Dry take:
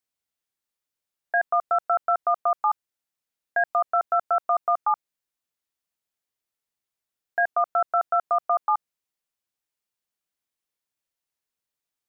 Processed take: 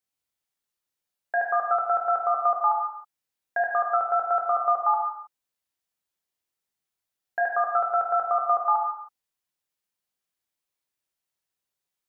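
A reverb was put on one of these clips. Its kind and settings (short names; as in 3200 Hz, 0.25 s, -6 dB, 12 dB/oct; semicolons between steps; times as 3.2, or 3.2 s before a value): non-linear reverb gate 0.34 s falling, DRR -0.5 dB; gain -2.5 dB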